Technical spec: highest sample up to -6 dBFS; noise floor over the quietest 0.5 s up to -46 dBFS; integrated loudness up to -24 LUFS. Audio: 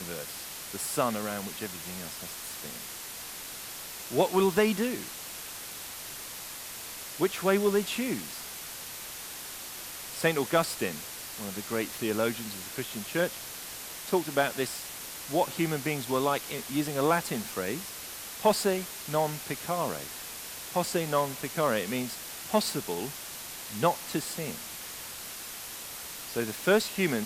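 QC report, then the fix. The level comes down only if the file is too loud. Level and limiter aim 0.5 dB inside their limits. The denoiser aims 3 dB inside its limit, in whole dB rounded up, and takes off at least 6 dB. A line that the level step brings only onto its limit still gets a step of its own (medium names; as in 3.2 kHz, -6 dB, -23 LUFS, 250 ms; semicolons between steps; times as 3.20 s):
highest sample -10.5 dBFS: pass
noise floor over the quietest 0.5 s -41 dBFS: fail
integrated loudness -31.5 LUFS: pass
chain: noise reduction 8 dB, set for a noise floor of -41 dBFS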